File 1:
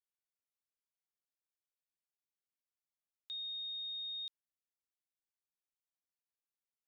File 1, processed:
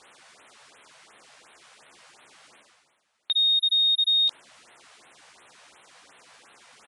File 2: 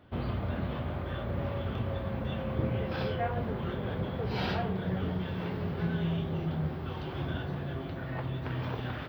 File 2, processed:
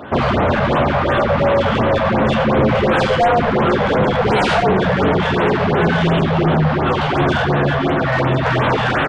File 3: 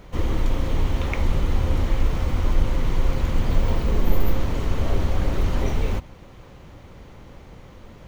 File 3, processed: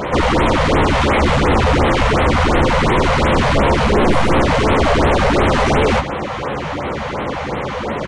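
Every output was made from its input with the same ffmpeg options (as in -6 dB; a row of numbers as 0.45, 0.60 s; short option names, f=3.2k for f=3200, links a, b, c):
-filter_complex "[0:a]asplit=2[a][b];[b]adelay=14,volume=-7dB[c];[a][c]amix=inputs=2:normalize=0,asplit=2[d][e];[e]highpass=f=720:p=1,volume=39dB,asoftclip=type=tanh:threshold=-4dB[f];[d][f]amix=inputs=2:normalize=0,lowpass=f=1.4k:p=1,volume=-6dB,aresample=22050,aresample=44100,areverse,acompressor=mode=upward:threshold=-35dB:ratio=2.5,areverse,afftfilt=real='re*(1-between(b*sr/1024,280*pow(6100/280,0.5+0.5*sin(2*PI*2.8*pts/sr))/1.41,280*pow(6100/280,0.5+0.5*sin(2*PI*2.8*pts/sr))*1.41))':imag='im*(1-between(b*sr/1024,280*pow(6100/280,0.5+0.5*sin(2*PI*2.8*pts/sr))/1.41,280*pow(6100/280,0.5+0.5*sin(2*PI*2.8*pts/sr))*1.41))':win_size=1024:overlap=0.75"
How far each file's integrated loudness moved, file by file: +20.5, +18.5, +10.0 LU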